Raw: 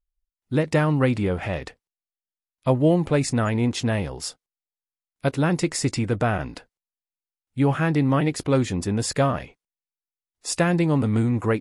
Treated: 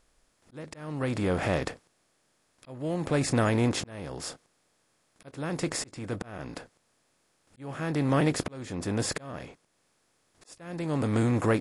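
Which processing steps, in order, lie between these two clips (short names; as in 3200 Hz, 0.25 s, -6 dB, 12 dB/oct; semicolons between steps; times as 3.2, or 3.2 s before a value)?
per-bin compression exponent 0.6; auto swell 0.673 s; gain -5.5 dB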